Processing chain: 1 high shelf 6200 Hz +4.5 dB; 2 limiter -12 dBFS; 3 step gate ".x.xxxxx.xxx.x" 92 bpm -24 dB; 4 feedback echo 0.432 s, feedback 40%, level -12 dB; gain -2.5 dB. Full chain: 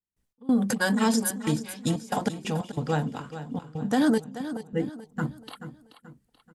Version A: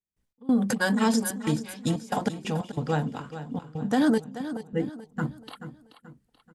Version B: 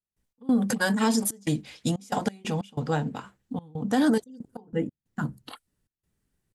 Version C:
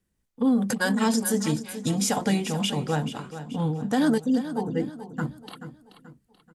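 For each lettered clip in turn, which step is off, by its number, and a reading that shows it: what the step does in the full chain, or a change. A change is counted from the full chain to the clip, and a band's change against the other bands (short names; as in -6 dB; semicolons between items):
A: 1, 8 kHz band -2.5 dB; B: 4, momentary loudness spread change +1 LU; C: 3, 4 kHz band +2.5 dB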